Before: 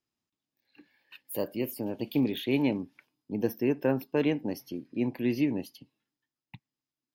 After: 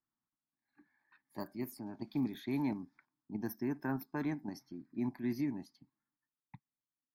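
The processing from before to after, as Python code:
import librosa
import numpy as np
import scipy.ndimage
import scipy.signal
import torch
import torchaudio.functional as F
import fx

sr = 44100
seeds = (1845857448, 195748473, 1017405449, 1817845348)

p1 = fx.level_steps(x, sr, step_db=15)
p2 = x + F.gain(torch.from_numpy(p1), 2.5).numpy()
p3 = fx.peak_eq(p2, sr, hz=78.0, db=-7.5, octaves=1.7)
p4 = fx.env_lowpass(p3, sr, base_hz=2000.0, full_db=-20.5)
p5 = fx.fixed_phaser(p4, sr, hz=1200.0, stages=4)
y = F.gain(torch.from_numpy(p5), -7.0).numpy()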